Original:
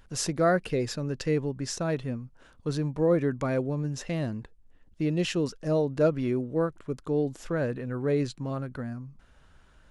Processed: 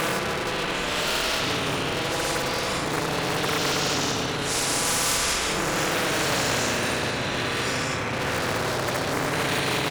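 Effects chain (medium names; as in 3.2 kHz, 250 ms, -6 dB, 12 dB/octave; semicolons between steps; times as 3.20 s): bass shelf 340 Hz +8.5 dB; doubling 22 ms -4 dB; delay 105 ms -15 dB; AM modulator 37 Hz, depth 80%; repeats whose band climbs or falls 390 ms, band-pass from 660 Hz, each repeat 0.7 oct, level -3 dB; Paulstretch 6.6×, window 0.05 s, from 6.66 s; waveshaping leveller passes 2; high-pass 210 Hz 6 dB/octave; spectrum-flattening compressor 4:1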